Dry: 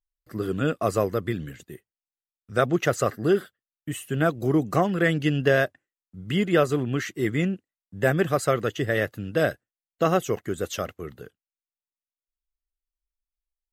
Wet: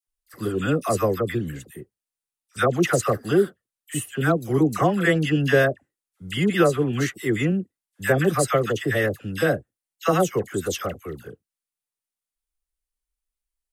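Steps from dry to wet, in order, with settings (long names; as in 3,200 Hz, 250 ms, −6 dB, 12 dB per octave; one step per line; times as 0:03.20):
parametric band 9,500 Hz +7.5 dB 0.57 octaves
notch filter 630 Hz, Q 12
all-pass dispersion lows, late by 73 ms, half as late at 1,100 Hz
level +2.5 dB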